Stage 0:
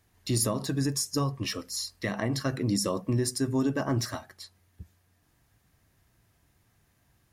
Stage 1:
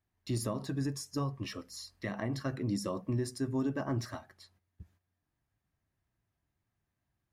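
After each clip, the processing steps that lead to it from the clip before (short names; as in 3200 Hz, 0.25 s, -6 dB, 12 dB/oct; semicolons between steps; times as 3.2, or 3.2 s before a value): gate -58 dBFS, range -10 dB; high shelf 3800 Hz -9.5 dB; notch 470 Hz, Q 12; gain -5.5 dB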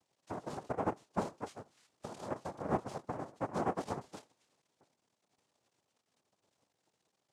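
crackle 330/s -47 dBFS; vowel filter u; noise vocoder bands 2; gain +4 dB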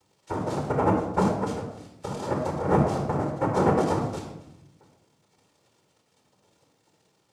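shoebox room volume 2700 m³, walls furnished, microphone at 4.4 m; gain +8.5 dB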